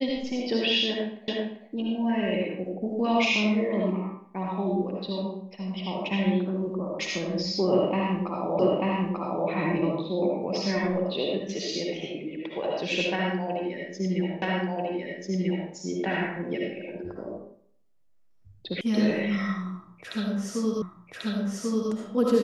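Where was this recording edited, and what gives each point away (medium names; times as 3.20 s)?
1.28 s: repeat of the last 0.39 s
8.59 s: repeat of the last 0.89 s
14.42 s: repeat of the last 1.29 s
18.81 s: sound stops dead
20.82 s: repeat of the last 1.09 s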